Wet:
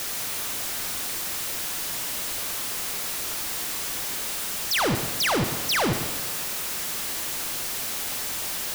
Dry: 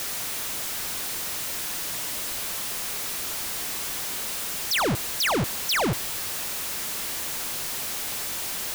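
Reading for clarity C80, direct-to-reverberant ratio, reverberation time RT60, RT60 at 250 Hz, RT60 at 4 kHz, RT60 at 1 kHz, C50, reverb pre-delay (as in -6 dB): 9.5 dB, 7.0 dB, 1.4 s, 1.3 s, 1.3 s, 1.4 s, 8.0 dB, 33 ms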